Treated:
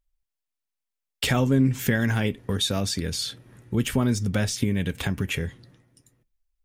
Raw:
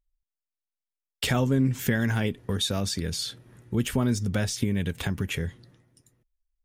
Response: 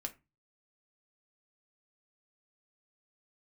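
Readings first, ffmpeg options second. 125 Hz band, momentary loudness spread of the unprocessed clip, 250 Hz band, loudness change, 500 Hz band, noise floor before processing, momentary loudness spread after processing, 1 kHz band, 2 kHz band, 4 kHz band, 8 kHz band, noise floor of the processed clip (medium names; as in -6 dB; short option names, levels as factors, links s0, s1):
+2.0 dB, 7 LU, +2.5 dB, +2.0 dB, +2.0 dB, under -85 dBFS, 8 LU, +2.0 dB, +2.5 dB, +2.5 dB, +2.0 dB, -85 dBFS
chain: -filter_complex "[0:a]asplit=2[s0][s1];[s1]equalizer=f=2400:t=o:w=0.77:g=5.5[s2];[1:a]atrim=start_sample=2205[s3];[s2][s3]afir=irnorm=-1:irlink=0,volume=0.355[s4];[s0][s4]amix=inputs=2:normalize=0"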